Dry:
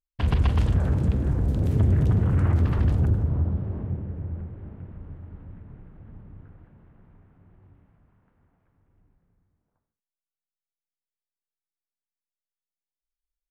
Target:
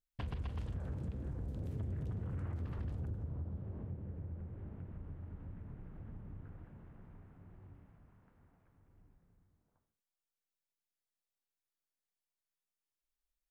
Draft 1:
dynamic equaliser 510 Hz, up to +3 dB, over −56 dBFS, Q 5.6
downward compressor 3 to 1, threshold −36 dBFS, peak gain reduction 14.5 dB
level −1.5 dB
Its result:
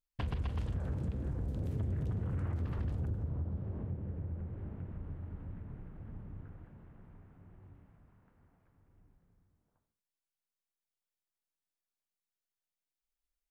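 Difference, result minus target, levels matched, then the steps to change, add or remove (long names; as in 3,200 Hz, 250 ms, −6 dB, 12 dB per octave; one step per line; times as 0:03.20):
downward compressor: peak gain reduction −4.5 dB
change: downward compressor 3 to 1, threshold −43 dBFS, peak gain reduction 19 dB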